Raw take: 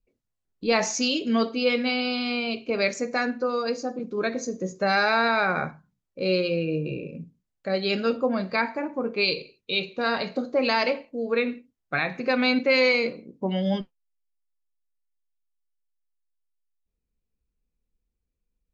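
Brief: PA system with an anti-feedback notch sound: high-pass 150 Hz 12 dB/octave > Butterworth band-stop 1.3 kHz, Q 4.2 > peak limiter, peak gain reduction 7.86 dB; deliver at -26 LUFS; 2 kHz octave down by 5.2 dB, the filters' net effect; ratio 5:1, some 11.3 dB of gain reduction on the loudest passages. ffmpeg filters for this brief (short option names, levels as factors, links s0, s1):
-af "equalizer=f=2000:t=o:g=-6.5,acompressor=threshold=0.0282:ratio=5,highpass=150,asuperstop=centerf=1300:order=8:qfactor=4.2,volume=3.55,alimiter=limit=0.158:level=0:latency=1"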